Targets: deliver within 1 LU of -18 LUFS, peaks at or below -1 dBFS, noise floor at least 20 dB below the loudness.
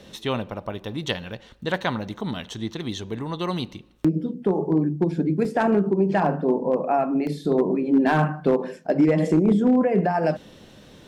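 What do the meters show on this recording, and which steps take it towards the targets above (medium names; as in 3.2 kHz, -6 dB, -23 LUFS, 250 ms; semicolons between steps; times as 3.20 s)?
clipped samples 0.4%; clipping level -11.5 dBFS; dropouts 2; longest dropout 1.2 ms; loudness -23.5 LUFS; peak level -11.5 dBFS; loudness target -18.0 LUFS
-> clip repair -11.5 dBFS; interpolate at 5.45/7.27 s, 1.2 ms; trim +5.5 dB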